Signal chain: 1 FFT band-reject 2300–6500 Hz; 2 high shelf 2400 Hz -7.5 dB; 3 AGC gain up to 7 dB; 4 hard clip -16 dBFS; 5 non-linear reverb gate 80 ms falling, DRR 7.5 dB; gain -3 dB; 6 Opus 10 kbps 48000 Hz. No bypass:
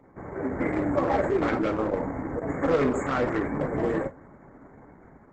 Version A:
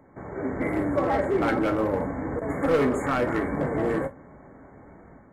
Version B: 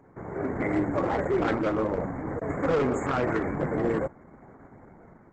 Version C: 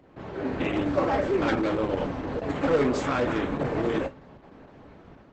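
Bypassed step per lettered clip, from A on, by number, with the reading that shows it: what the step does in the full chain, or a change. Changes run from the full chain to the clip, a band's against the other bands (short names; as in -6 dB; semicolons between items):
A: 6, loudness change +1.0 LU; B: 5, crest factor change -1.5 dB; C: 1, 4 kHz band +7.0 dB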